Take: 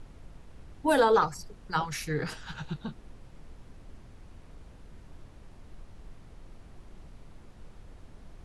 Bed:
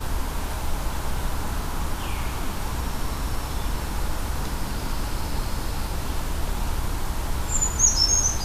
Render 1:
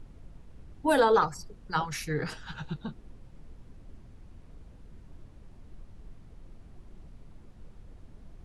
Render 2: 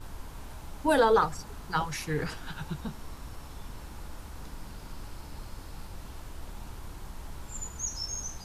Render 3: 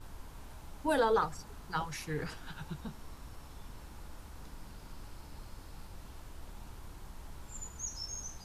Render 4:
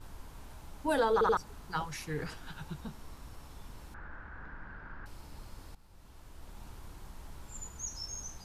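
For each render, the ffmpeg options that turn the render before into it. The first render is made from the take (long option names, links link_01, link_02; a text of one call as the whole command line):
ffmpeg -i in.wav -af "afftdn=noise_reduction=6:noise_floor=-52" out.wav
ffmpeg -i in.wav -i bed.wav -filter_complex "[1:a]volume=-16dB[link_01];[0:a][link_01]amix=inputs=2:normalize=0" out.wav
ffmpeg -i in.wav -af "volume=-6dB" out.wav
ffmpeg -i in.wav -filter_complex "[0:a]asettb=1/sr,asplit=3[link_01][link_02][link_03];[link_01]atrim=end=3.944[link_04];[link_02]atrim=start=3.94:end=5.06,asetpts=PTS-STARTPTS,afade=type=in:duration=0.004:curve=qsin,afade=type=out:start_time=1.116:duration=0.004:curve=qsin,lowpass=frequency=1600:width_type=q:width=7.7[link_05];[link_03]atrim=start=5.056[link_06];[link_04][link_05]acrossfade=duration=0.004:curve1=hsin:curve2=qsin[link_07];[link_07][link_06]acrossfade=duration=0.004:curve1=qsin:curve2=hsin,asplit=5[link_08][link_09][link_10][link_11][link_12];[link_08]atrim=end=1.212[link_13];[link_09]atrim=start=1.128:end=1.212[link_14];[link_10]atrim=start=1.128:end=1.212[link_15];[link_11]atrim=start=1.368:end=5.75,asetpts=PTS-STARTPTS,afade=type=out:start_time=4.378:duration=0.004:curve=hsin:silence=0.16788[link_16];[link_12]atrim=start=5.75,asetpts=PTS-STARTPTS,afade=type=in:duration=0.9:silence=0.16788[link_17];[link_13][link_14]acrossfade=duration=0.004:curve1=hsin:curve2=hsin[link_18];[link_18][link_15]acrossfade=duration=0.004:curve1=hsin:curve2=hsin[link_19];[link_16][link_17]concat=n=2:v=0:a=1[link_20];[link_19][link_20]acrossfade=duration=0.004:curve1=hsin:curve2=hsin" out.wav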